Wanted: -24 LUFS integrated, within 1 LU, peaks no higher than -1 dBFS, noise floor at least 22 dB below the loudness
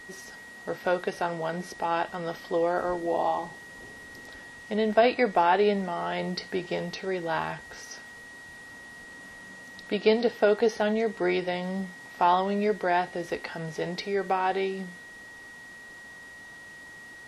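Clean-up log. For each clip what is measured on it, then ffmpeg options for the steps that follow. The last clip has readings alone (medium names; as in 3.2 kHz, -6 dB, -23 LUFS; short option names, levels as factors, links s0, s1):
steady tone 1.9 kHz; tone level -44 dBFS; loudness -27.5 LUFS; peak level -8.5 dBFS; loudness target -24.0 LUFS
-> -af "bandreject=f=1900:w=30"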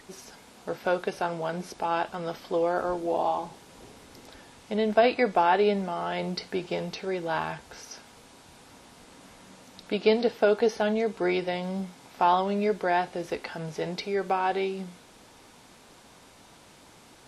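steady tone not found; loudness -27.5 LUFS; peak level -8.5 dBFS; loudness target -24.0 LUFS
-> -af "volume=1.5"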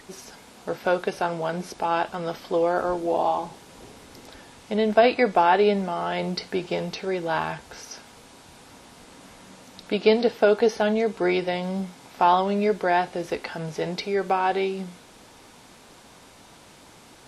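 loudness -24.0 LUFS; peak level -5.0 dBFS; noise floor -50 dBFS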